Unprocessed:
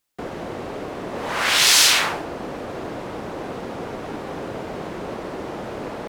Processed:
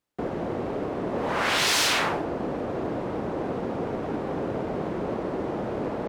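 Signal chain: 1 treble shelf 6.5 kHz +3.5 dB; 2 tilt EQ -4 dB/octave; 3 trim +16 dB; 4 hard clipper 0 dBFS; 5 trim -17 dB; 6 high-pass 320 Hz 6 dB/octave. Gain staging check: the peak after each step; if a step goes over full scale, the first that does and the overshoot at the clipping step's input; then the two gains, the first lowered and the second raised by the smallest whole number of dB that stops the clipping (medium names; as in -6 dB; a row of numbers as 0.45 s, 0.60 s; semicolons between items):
-0.5 dBFS, -8.5 dBFS, +7.5 dBFS, 0.0 dBFS, -17.0 dBFS, -14.0 dBFS; step 3, 7.5 dB; step 3 +8 dB, step 5 -9 dB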